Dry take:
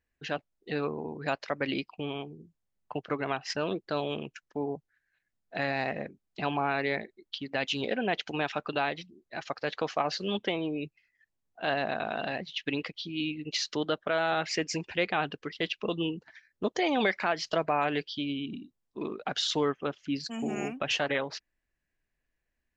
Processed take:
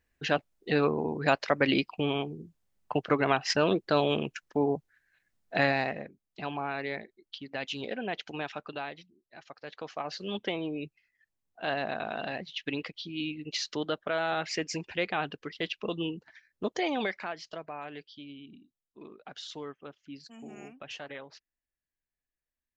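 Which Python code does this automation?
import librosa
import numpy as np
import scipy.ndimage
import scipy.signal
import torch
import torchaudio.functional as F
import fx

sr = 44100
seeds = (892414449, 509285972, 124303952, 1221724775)

y = fx.gain(x, sr, db=fx.line((5.64, 6.0), (6.06, -5.0), (8.41, -5.0), (9.49, -13.0), (10.48, -2.0), (16.84, -2.0), (17.61, -13.0)))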